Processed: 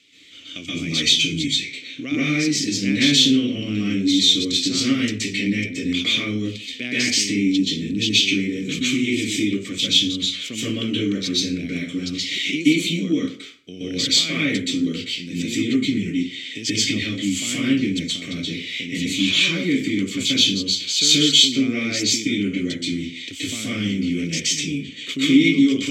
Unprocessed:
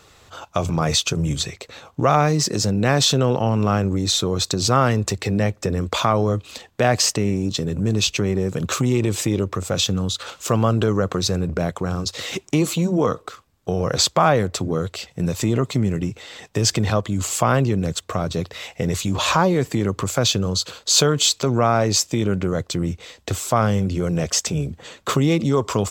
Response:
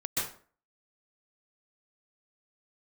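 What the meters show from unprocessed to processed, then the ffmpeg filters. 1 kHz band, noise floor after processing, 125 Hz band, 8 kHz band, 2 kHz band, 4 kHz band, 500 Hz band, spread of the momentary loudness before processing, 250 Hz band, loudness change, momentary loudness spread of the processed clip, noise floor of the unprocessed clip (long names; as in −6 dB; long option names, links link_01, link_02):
−22.0 dB, −36 dBFS, −9.0 dB, −1.0 dB, +5.0 dB, +6.0 dB, −9.5 dB, 10 LU, +3.0 dB, +1.0 dB, 12 LU, −54 dBFS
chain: -filter_complex "[0:a]asplit=3[link_01][link_02][link_03];[link_01]bandpass=frequency=270:width_type=q:width=8,volume=0dB[link_04];[link_02]bandpass=frequency=2290:width_type=q:width=8,volume=-6dB[link_05];[link_03]bandpass=frequency=3010:width_type=q:width=8,volume=-9dB[link_06];[link_04][link_05][link_06]amix=inputs=3:normalize=0,aexciter=amount=3.1:drive=8:freq=2100[link_07];[1:a]atrim=start_sample=2205[link_08];[link_07][link_08]afir=irnorm=-1:irlink=0,volume=3dB"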